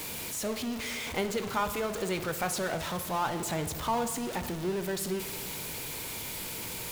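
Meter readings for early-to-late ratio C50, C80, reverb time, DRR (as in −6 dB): 11.0 dB, 13.0 dB, 1.5 s, 8.5 dB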